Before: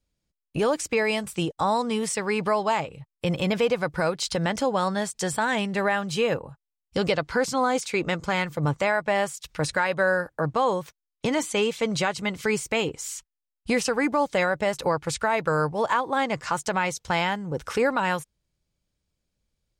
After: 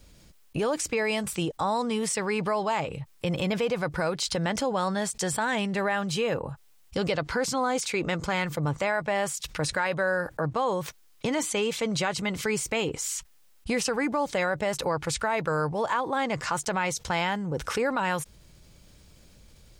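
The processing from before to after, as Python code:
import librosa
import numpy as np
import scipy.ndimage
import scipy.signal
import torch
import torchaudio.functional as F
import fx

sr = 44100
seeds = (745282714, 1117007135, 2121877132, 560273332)

y = fx.env_flatten(x, sr, amount_pct=50)
y = F.gain(torch.from_numpy(y), -5.0).numpy()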